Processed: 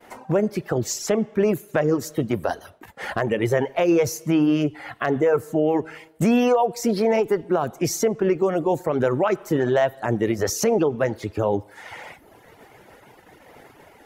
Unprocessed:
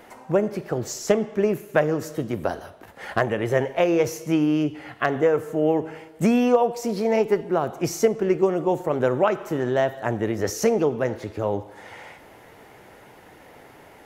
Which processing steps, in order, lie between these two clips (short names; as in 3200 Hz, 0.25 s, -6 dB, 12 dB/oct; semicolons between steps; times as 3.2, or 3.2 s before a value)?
expander -43 dBFS; reverb removal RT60 0.83 s; limiter -16.5 dBFS, peak gain reduction 9.5 dB; gain +5.5 dB